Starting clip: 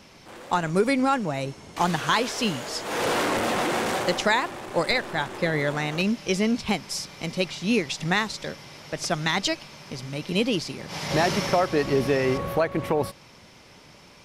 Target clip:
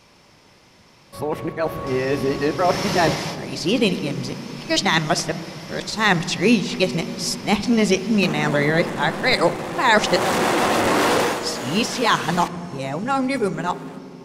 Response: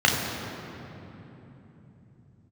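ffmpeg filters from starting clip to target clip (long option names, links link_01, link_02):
-filter_complex "[0:a]areverse,dynaudnorm=framelen=610:gausssize=9:maxgain=11.5dB,asplit=2[link_01][link_02];[1:a]atrim=start_sample=2205,asetrate=66150,aresample=44100,lowpass=3600[link_03];[link_02][link_03]afir=irnorm=-1:irlink=0,volume=-27.5dB[link_04];[link_01][link_04]amix=inputs=2:normalize=0,volume=-2dB"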